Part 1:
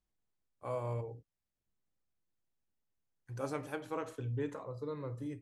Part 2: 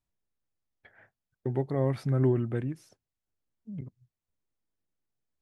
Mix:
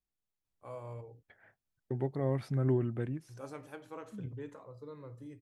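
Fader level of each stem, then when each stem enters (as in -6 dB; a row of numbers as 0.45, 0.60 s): -7.0, -4.5 dB; 0.00, 0.45 s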